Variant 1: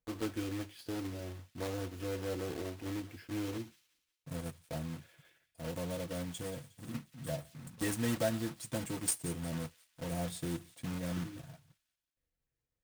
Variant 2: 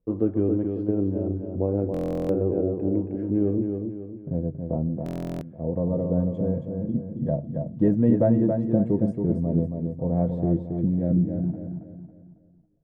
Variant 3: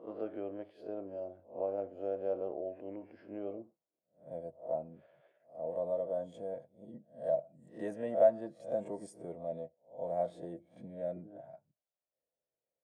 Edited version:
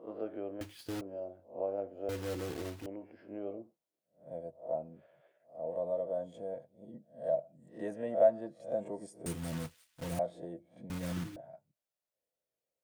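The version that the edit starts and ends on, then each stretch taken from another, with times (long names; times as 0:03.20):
3
0:00.61–0:01.01: punch in from 1
0:02.09–0:02.86: punch in from 1
0:09.26–0:10.19: punch in from 1
0:10.90–0:11.36: punch in from 1
not used: 2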